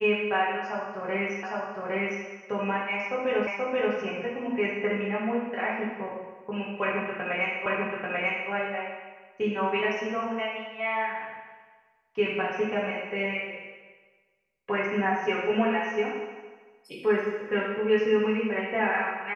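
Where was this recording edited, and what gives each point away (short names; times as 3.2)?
1.43 repeat of the last 0.81 s
3.47 repeat of the last 0.48 s
7.66 repeat of the last 0.84 s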